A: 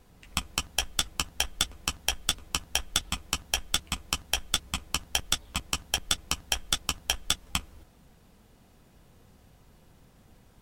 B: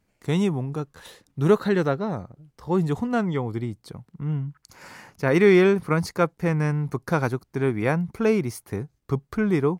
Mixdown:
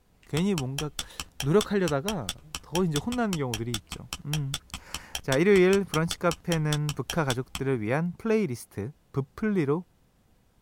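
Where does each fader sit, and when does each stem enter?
−6.5, −4.0 decibels; 0.00, 0.05 seconds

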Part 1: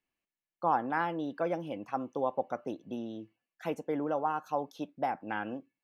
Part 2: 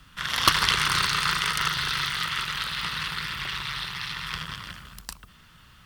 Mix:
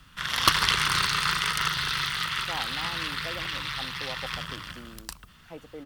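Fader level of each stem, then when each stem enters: −9.0, −1.0 decibels; 1.85, 0.00 seconds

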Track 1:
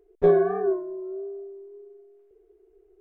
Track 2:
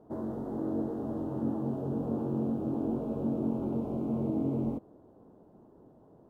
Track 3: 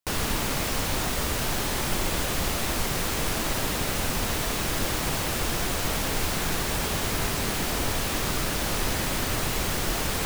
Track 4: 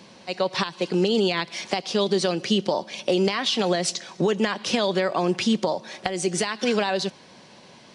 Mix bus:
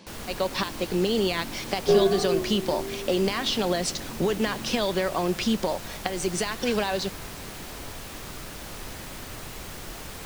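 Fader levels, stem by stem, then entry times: −2.0, −10.0, −11.5, −3.0 decibels; 1.65, 0.00, 0.00, 0.00 seconds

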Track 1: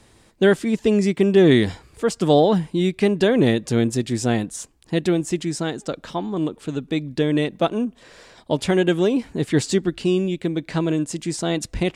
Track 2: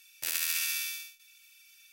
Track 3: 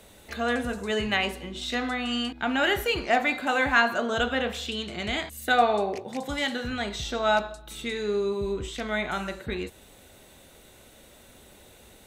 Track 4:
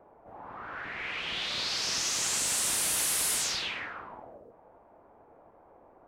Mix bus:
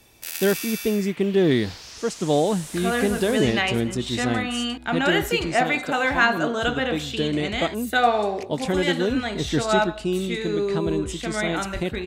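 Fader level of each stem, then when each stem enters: −5.0, −0.5, +2.0, −10.5 decibels; 0.00, 0.00, 2.45, 0.00 seconds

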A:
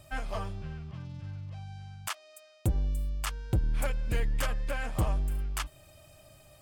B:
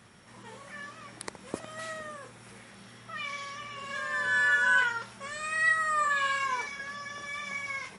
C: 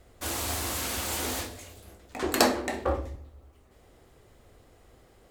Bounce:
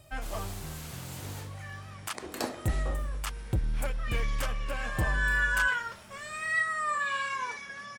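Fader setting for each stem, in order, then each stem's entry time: −1.5, −3.0, −13.0 decibels; 0.00, 0.90, 0.00 seconds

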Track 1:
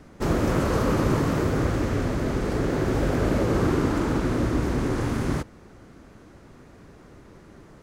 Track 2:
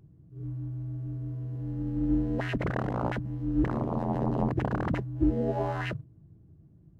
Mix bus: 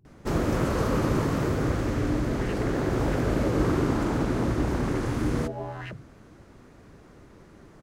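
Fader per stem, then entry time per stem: −2.5, −5.0 decibels; 0.05, 0.00 seconds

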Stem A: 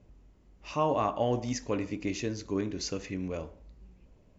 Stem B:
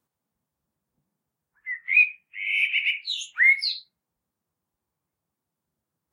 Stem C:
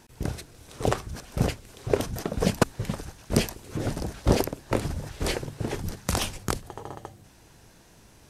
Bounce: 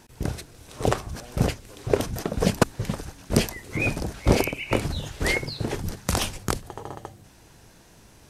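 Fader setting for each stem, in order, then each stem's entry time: −20.0, −10.5, +2.0 decibels; 0.00, 1.85, 0.00 seconds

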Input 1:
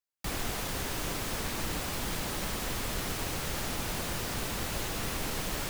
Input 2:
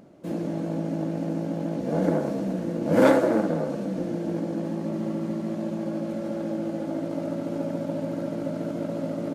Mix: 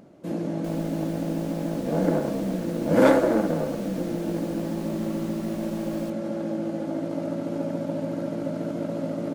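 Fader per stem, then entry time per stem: −12.0, +0.5 decibels; 0.40, 0.00 seconds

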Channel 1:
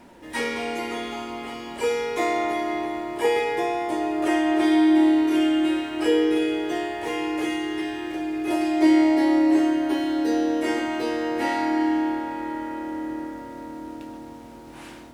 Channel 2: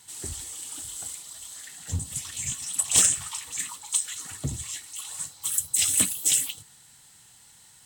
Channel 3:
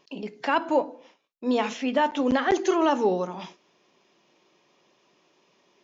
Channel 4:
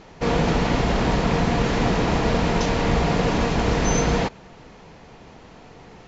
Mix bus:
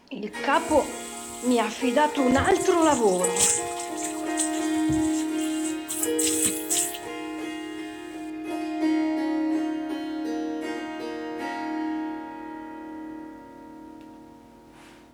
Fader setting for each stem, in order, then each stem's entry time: −7.0 dB, −2.5 dB, +1.5 dB, muted; 0.00 s, 0.45 s, 0.00 s, muted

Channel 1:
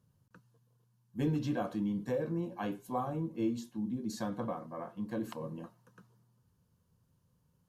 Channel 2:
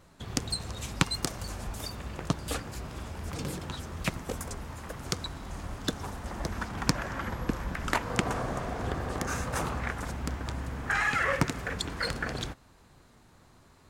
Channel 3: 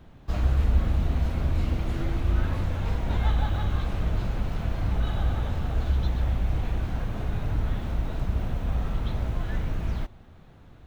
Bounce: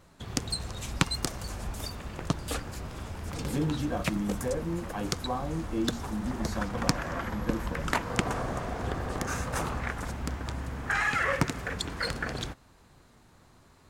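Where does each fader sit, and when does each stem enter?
+2.0, 0.0, −20.0 decibels; 2.35, 0.00, 0.20 seconds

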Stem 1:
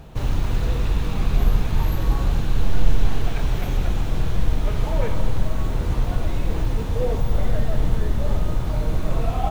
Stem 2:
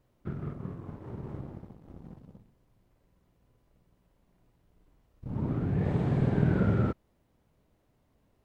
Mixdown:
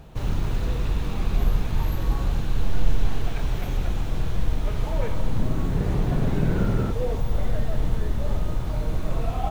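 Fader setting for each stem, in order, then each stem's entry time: −3.5, +1.0 decibels; 0.00, 0.00 seconds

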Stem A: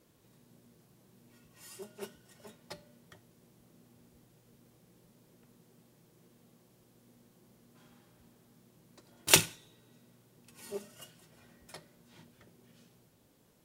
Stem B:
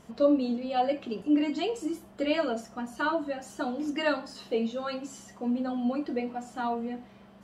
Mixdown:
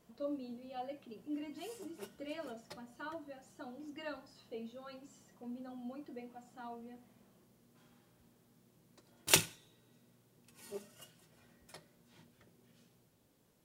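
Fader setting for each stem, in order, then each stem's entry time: −5.0, −17.0 decibels; 0.00, 0.00 seconds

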